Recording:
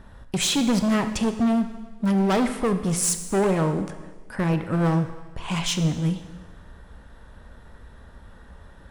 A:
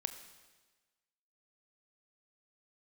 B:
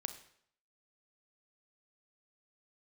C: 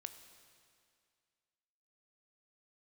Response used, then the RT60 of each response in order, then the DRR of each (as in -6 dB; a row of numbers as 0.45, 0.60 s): A; 1.3, 0.65, 2.2 s; 8.5, 9.0, 9.0 dB